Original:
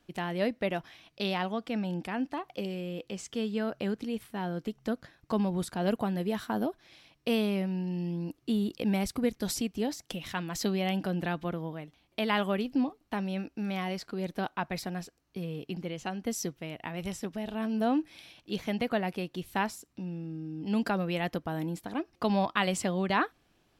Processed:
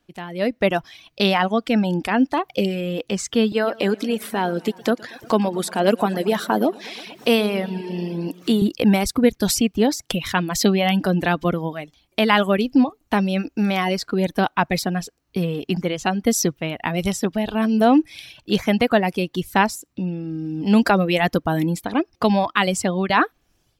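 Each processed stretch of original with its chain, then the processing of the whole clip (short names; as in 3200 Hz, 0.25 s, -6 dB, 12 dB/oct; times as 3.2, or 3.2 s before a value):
3.52–8.62 HPF 250 Hz + upward compressor, threshold -37 dBFS + warbling echo 0.115 s, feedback 68%, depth 77 cents, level -13.5 dB
whole clip: reverb removal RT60 0.78 s; AGC gain up to 16 dB; gain -1 dB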